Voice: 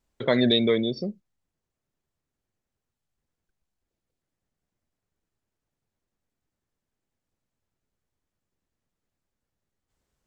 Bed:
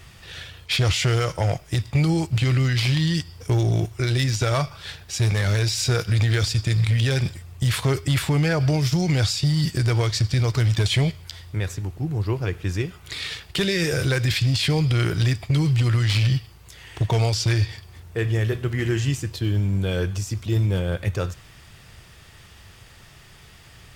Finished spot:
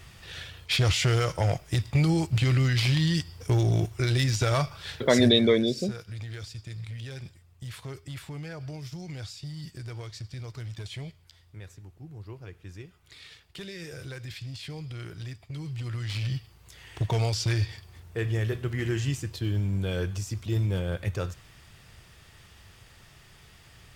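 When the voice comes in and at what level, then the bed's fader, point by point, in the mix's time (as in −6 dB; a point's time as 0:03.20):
4.80 s, +1.0 dB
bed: 0:05.15 −3 dB
0:05.42 −18 dB
0:15.47 −18 dB
0:16.76 −5.5 dB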